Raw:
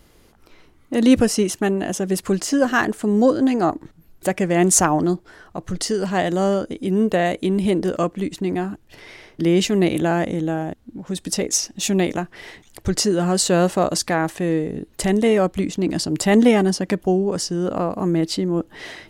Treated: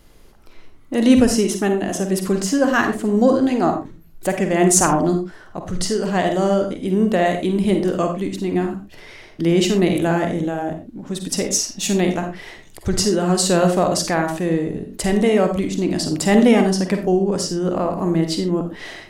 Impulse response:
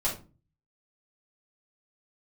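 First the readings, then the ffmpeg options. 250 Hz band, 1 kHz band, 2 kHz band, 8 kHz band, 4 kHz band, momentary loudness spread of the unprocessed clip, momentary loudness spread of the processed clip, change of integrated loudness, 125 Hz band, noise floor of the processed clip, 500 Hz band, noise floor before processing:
+1.5 dB, +1.5 dB, +1.0 dB, +1.0 dB, +1.0 dB, 12 LU, 12 LU, +1.5 dB, +1.5 dB, -44 dBFS, +1.5 dB, -54 dBFS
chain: -filter_complex "[0:a]asplit=2[a][b];[1:a]atrim=start_sample=2205,afade=t=out:st=0.15:d=0.01,atrim=end_sample=7056,adelay=44[c];[b][c]afir=irnorm=-1:irlink=0,volume=-12.5dB[d];[a][d]amix=inputs=2:normalize=0"

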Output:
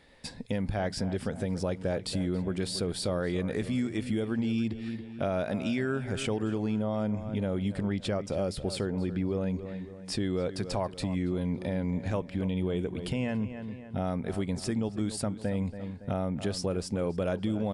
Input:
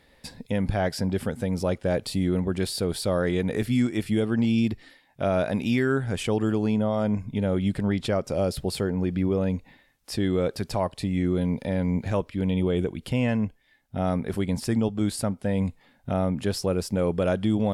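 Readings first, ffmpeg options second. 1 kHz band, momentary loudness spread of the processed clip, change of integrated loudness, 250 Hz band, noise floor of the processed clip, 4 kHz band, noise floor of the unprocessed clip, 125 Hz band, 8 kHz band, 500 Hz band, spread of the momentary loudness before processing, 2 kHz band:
-5.5 dB, 4 LU, -5.5 dB, -5.5 dB, -45 dBFS, -3.0 dB, -61 dBFS, -5.5 dB, -3.5 dB, -5.5 dB, 4 LU, -5.5 dB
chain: -filter_complex "[0:a]aresample=22050,aresample=44100,asplit=2[a][b];[b]adelay=280,lowpass=f=3.5k:p=1,volume=-14dB,asplit=2[c][d];[d]adelay=280,lowpass=f=3.5k:p=1,volume=0.43,asplit=2[e][f];[f]adelay=280,lowpass=f=3.5k:p=1,volume=0.43,asplit=2[g][h];[h]adelay=280,lowpass=f=3.5k:p=1,volume=0.43[i];[c][e][g][i]amix=inputs=4:normalize=0[j];[a][j]amix=inputs=2:normalize=0,acompressor=threshold=-29dB:ratio=2.5,bandreject=f=60:t=h:w=6,bandreject=f=120:t=h:w=6"

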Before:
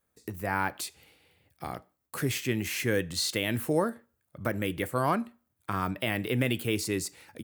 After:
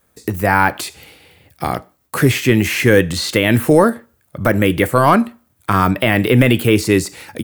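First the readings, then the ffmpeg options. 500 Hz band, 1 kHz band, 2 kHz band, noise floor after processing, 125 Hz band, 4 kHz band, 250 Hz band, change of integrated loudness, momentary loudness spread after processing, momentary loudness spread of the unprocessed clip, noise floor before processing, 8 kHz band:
+16.0 dB, +16.0 dB, +15.5 dB, -61 dBFS, +16.5 dB, +11.0 dB, +16.5 dB, +15.5 dB, 14 LU, 13 LU, -78 dBFS, +9.5 dB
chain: -filter_complex "[0:a]acrossover=split=2800[a][b];[b]acompressor=threshold=-40dB:ratio=4:attack=1:release=60[c];[a][c]amix=inputs=2:normalize=0,apsyclip=18.5dB,volume=-1.5dB"

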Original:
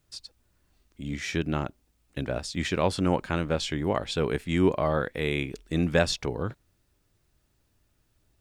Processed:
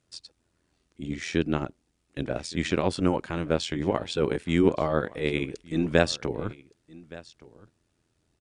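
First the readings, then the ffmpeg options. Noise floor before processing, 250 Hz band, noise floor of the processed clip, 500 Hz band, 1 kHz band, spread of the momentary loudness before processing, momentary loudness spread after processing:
-71 dBFS, +1.5 dB, -74 dBFS, +1.0 dB, -1.0 dB, 12 LU, 19 LU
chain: -af "highpass=75,equalizer=f=330:t=o:w=1:g=4,tremolo=f=84:d=0.71,aecho=1:1:1169:0.0891,aresample=22050,aresample=44100,volume=2dB"

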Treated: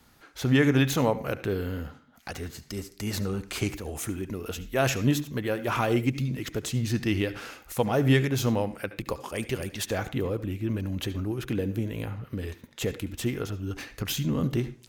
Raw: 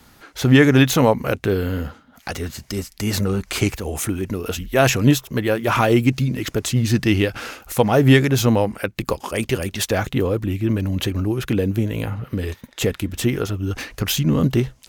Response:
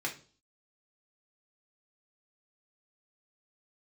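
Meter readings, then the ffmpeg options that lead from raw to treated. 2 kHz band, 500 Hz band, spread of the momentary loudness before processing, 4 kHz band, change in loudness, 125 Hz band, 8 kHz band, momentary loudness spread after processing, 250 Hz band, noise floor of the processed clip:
-9.0 dB, -9.0 dB, 13 LU, -9.0 dB, -9.0 dB, -8.5 dB, -9.0 dB, 13 LU, -9.0 dB, -56 dBFS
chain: -filter_complex "[0:a]asplit=2[a][b];[1:a]atrim=start_sample=2205,adelay=70[c];[b][c]afir=irnorm=-1:irlink=0,volume=-17.5dB[d];[a][d]amix=inputs=2:normalize=0,volume=-9dB"

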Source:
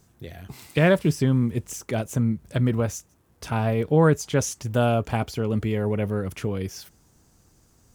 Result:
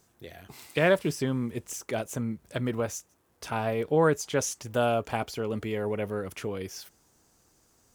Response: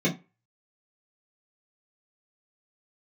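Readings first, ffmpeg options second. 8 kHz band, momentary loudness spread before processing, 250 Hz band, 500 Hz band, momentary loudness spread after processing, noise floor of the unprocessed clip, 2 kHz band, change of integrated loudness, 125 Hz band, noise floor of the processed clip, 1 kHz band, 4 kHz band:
-2.0 dB, 17 LU, -7.5 dB, -3.0 dB, 16 LU, -61 dBFS, -2.0 dB, -5.5 dB, -11.0 dB, -67 dBFS, -2.0 dB, -2.0 dB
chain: -af "bass=f=250:g=-10,treble=f=4k:g=0,volume=-2dB"

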